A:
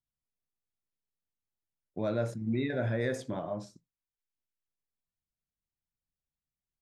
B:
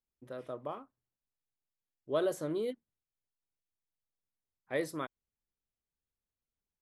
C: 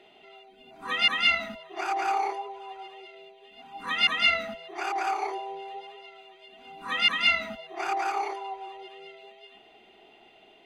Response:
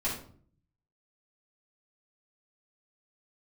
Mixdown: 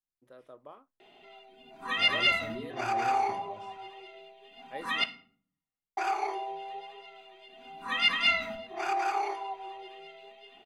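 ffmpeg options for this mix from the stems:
-filter_complex "[0:a]volume=-14.5dB,asplit=2[a][b];[b]volume=-11.5dB[c];[1:a]lowshelf=f=190:g=-11.5,volume=-8dB[d];[2:a]adelay=1000,volume=-3.5dB,asplit=3[e][f][g];[e]atrim=end=5.04,asetpts=PTS-STARTPTS,afade=t=out:st=5.036:d=0.004:c=hsin[h];[f]atrim=start=5.04:end=5.97,asetpts=PTS-STARTPTS,volume=0[i];[g]atrim=start=5.97,asetpts=PTS-STARTPTS,afade=t=in:d=0.004:c=hsin[j];[h][i][j]concat=n=3:v=0:a=1,asplit=2[k][l];[l]volume=-12.5dB[m];[3:a]atrim=start_sample=2205[n];[c][m]amix=inputs=2:normalize=0[o];[o][n]afir=irnorm=-1:irlink=0[p];[a][d][k][p]amix=inputs=4:normalize=0"

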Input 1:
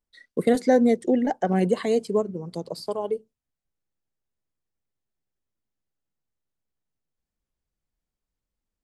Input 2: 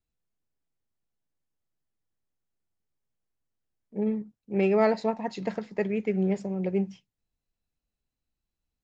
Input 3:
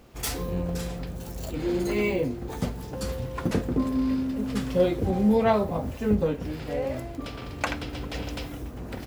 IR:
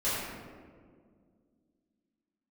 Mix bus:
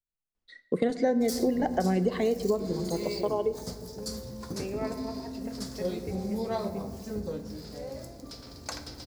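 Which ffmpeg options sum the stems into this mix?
-filter_complex "[0:a]lowpass=5.7k,adelay=350,volume=0dB,asplit=2[a][b];[b]volume=-22.5dB[c];[1:a]volume=-14.5dB,asplit=2[d][e];[e]volume=-14.5dB[f];[2:a]highshelf=f=3.7k:t=q:w=3:g=9,adelay=1050,volume=-11.5dB,asplit=2[g][h];[h]volume=-18dB[i];[3:a]atrim=start_sample=2205[j];[c][f][i]amix=inputs=3:normalize=0[k];[k][j]afir=irnorm=-1:irlink=0[l];[a][d][g][l]amix=inputs=4:normalize=0,acompressor=threshold=-22dB:ratio=6"

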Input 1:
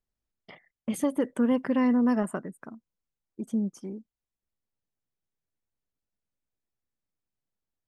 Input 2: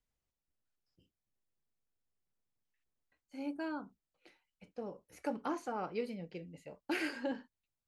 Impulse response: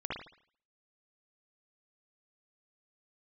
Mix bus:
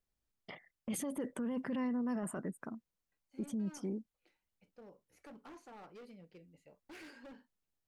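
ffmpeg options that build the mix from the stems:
-filter_complex "[0:a]volume=-0.5dB[a];[1:a]asoftclip=type=hard:threshold=-38dB,volume=-11.5dB[b];[a][b]amix=inputs=2:normalize=0,alimiter=level_in=7dB:limit=-24dB:level=0:latency=1:release=12,volume=-7dB"

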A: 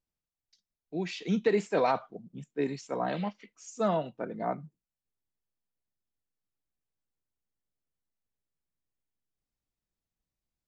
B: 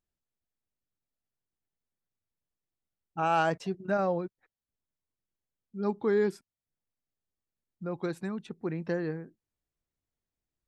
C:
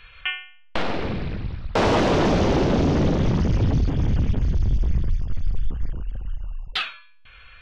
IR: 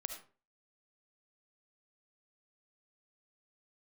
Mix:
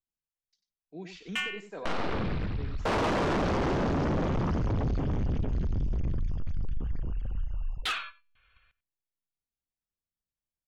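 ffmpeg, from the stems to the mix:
-filter_complex "[0:a]alimiter=limit=-22dB:level=0:latency=1:release=357,volume=-9dB,asplit=2[a][b];[b]volume=-9.5dB[c];[2:a]agate=range=-21dB:threshold=-41dB:ratio=16:detection=peak,adelay=1100,volume=1.5dB,asplit=2[d][e];[e]volume=-20.5dB[f];[c][f]amix=inputs=2:normalize=0,aecho=0:1:94:1[g];[a][d][g]amix=inputs=3:normalize=0,adynamicequalizer=threshold=0.0126:dfrequency=1200:dqfactor=1.7:tfrequency=1200:tqfactor=1.7:attack=5:release=100:ratio=0.375:range=3:mode=boostabove:tftype=bell,asoftclip=type=tanh:threshold=-20.5dB,alimiter=level_in=1dB:limit=-24dB:level=0:latency=1:release=361,volume=-1dB"

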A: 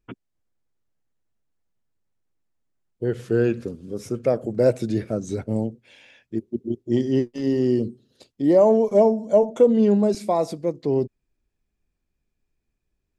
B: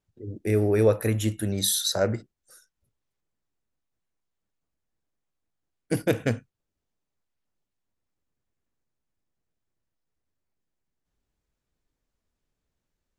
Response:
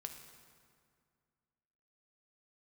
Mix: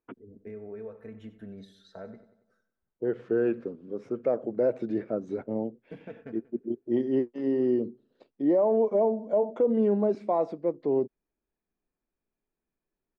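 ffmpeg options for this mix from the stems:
-filter_complex "[0:a]highpass=260,alimiter=limit=-13.5dB:level=0:latency=1:release=70,volume=-2.5dB[a];[1:a]aecho=1:1:4.5:0.66,acompressor=threshold=-27dB:ratio=4,volume=-12.5dB,asplit=2[b][c];[c]volume=-14.5dB,aecho=0:1:93|186|279|372|465|558|651:1|0.49|0.24|0.118|0.0576|0.0282|0.0138[d];[a][b][d]amix=inputs=3:normalize=0,lowpass=1.6k"

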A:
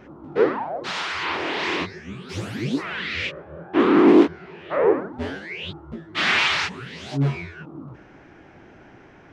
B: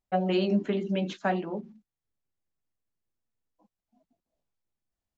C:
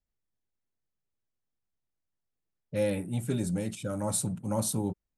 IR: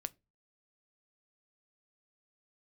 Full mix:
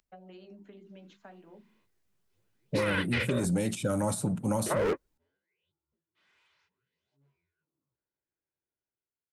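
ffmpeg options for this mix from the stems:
-filter_complex "[0:a]aecho=1:1:2:0.4,asoftclip=type=hard:threshold=-16dB,volume=0dB,asplit=3[a][b][c];[a]atrim=end=3.45,asetpts=PTS-STARTPTS,afade=t=out:st=3.446:d=0.004:c=hsin[d];[b]atrim=start=3.45:end=4.66,asetpts=PTS-STARTPTS,volume=0[e];[c]atrim=start=4.66,asetpts=PTS-STARTPTS,afade=t=in:d=0.004:c=hsin[f];[d][e][f]concat=n=3:v=0:a=1[g];[1:a]bandreject=f=50:t=h:w=6,bandreject=f=100:t=h:w=6,bandreject=f=150:t=h:w=6,bandreject=f=200:t=h:w=6,acompressor=threshold=-29dB:ratio=10,volume=-18dB[h];[2:a]volume=-0.5dB,asplit=2[i][j];[j]apad=whole_len=411489[k];[g][k]sidechaingate=range=-60dB:threshold=-32dB:ratio=16:detection=peak[l];[l][i]amix=inputs=2:normalize=0,dynaudnorm=f=460:g=5:m=10.5dB,alimiter=limit=-14.5dB:level=0:latency=1:release=52,volume=0dB[m];[h][m]amix=inputs=2:normalize=0,acrossover=split=220|1800[n][o][p];[n]acompressor=threshold=-33dB:ratio=4[q];[o]acompressor=threshold=-28dB:ratio=4[r];[p]acompressor=threshold=-37dB:ratio=4[s];[q][r][s]amix=inputs=3:normalize=0"

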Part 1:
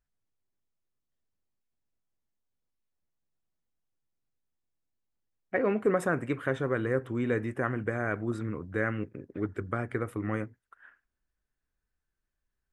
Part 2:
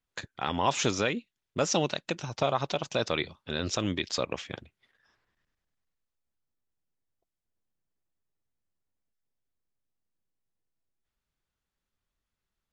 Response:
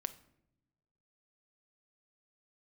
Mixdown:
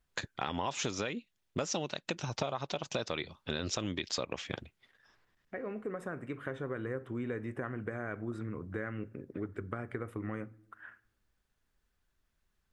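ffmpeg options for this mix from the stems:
-filter_complex "[0:a]highshelf=f=6.2k:g=-6.5,acompressor=threshold=-47dB:ratio=2,volume=0.5dB,asplit=2[a][b];[b]volume=-3dB[c];[1:a]volume=2.5dB,asplit=2[d][e];[e]apad=whole_len=561076[f];[a][f]sidechaincompress=threshold=-45dB:ratio=8:attack=5.8:release=1380[g];[2:a]atrim=start_sample=2205[h];[c][h]afir=irnorm=-1:irlink=0[i];[g][d][i]amix=inputs=3:normalize=0,acompressor=threshold=-31dB:ratio=8"

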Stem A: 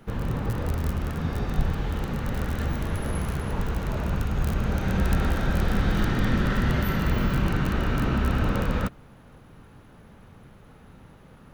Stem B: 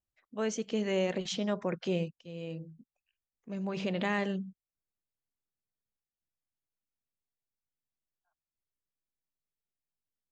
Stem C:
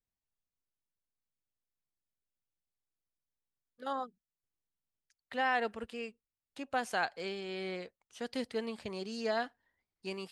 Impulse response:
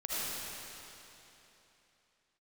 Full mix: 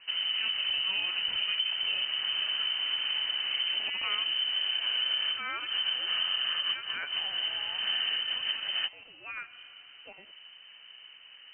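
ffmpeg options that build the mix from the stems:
-filter_complex "[0:a]volume=-2.5dB[a];[1:a]volume=-2dB[b];[2:a]highpass=f=1.4k:p=1,volume=-1.5dB,asplit=3[c][d][e];[d]volume=-18dB[f];[e]apad=whole_len=508818[g];[a][g]sidechaincompress=threshold=-52dB:ratio=8:attack=16:release=121[h];[3:a]atrim=start_sample=2205[i];[f][i]afir=irnorm=-1:irlink=0[j];[h][b][c][j]amix=inputs=4:normalize=0,lowpass=f=2.6k:t=q:w=0.5098,lowpass=f=2.6k:t=q:w=0.6013,lowpass=f=2.6k:t=q:w=0.9,lowpass=f=2.6k:t=q:w=2.563,afreqshift=-3100,acompressor=threshold=-27dB:ratio=6"

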